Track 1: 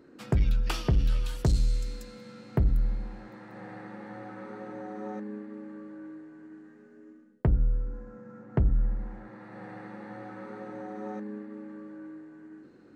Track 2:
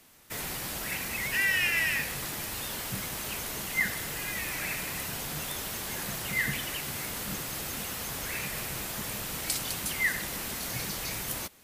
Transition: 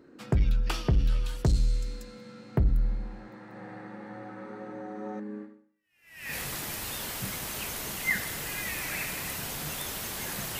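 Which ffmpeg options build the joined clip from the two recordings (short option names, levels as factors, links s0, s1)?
-filter_complex "[0:a]apad=whole_dur=10.59,atrim=end=10.59,atrim=end=6.35,asetpts=PTS-STARTPTS[s0];[1:a]atrim=start=1.13:end=6.29,asetpts=PTS-STARTPTS[s1];[s0][s1]acrossfade=d=0.92:c1=exp:c2=exp"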